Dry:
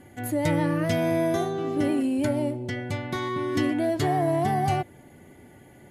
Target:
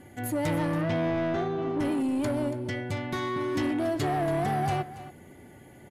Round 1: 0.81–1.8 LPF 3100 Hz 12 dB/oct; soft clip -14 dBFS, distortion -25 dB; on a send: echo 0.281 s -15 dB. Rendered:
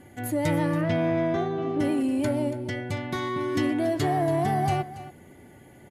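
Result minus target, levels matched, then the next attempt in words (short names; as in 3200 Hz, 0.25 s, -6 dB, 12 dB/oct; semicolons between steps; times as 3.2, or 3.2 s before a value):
soft clip: distortion -12 dB
0.81–1.8 LPF 3100 Hz 12 dB/oct; soft clip -23 dBFS, distortion -13 dB; on a send: echo 0.281 s -15 dB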